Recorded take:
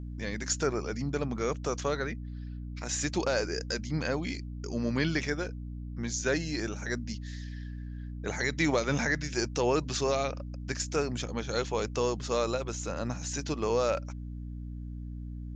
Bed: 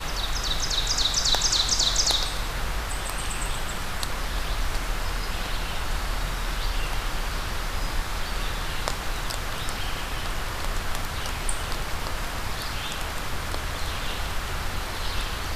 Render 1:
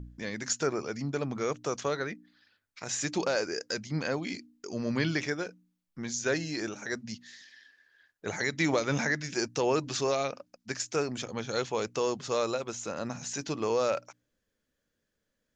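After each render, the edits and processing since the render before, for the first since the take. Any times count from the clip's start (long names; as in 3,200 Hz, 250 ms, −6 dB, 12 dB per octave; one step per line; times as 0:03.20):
hum removal 60 Hz, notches 5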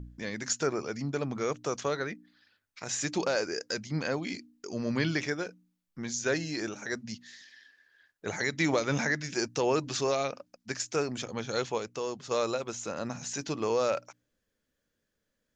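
0:11.78–0:12.31: clip gain −5 dB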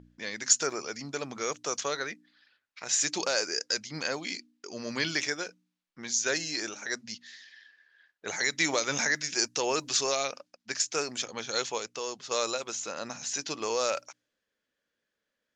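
low-pass that shuts in the quiet parts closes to 2,900 Hz, open at −24 dBFS
RIAA equalisation recording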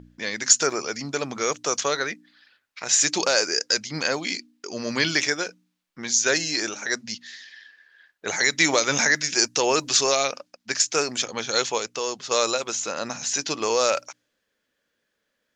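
level +7.5 dB
brickwall limiter −3 dBFS, peak gain reduction 2 dB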